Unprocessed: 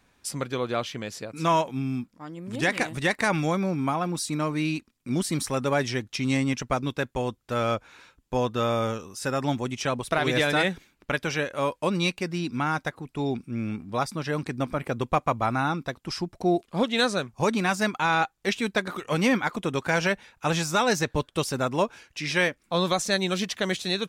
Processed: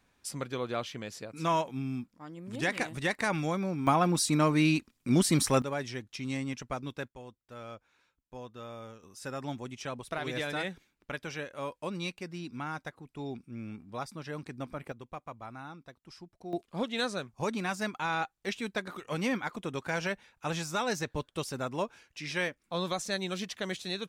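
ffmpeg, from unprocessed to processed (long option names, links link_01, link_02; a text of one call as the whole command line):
ffmpeg -i in.wav -af "asetnsamples=nb_out_samples=441:pad=0,asendcmd='3.87 volume volume 2dB;5.62 volume volume -10dB;7.08 volume volume -19dB;9.03 volume volume -11dB;14.92 volume volume -19dB;16.53 volume volume -8.5dB',volume=-6dB" out.wav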